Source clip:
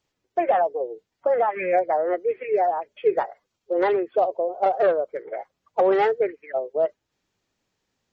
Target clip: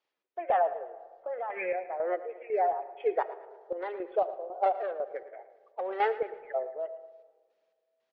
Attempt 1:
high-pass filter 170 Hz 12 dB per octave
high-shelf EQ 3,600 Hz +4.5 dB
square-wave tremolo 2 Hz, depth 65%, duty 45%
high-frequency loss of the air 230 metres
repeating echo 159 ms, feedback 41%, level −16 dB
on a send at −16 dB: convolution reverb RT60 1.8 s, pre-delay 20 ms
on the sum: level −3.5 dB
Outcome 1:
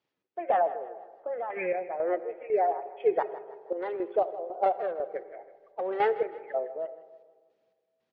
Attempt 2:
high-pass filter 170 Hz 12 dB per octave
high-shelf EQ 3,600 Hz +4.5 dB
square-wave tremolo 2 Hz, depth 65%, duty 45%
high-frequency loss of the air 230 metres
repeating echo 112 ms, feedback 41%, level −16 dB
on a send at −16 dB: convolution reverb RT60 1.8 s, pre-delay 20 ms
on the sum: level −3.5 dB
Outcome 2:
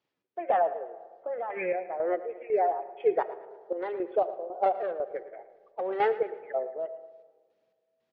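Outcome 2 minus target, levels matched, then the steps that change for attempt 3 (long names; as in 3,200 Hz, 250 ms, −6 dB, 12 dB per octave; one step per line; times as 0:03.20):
125 Hz band +7.5 dB
change: high-pass filter 480 Hz 12 dB per octave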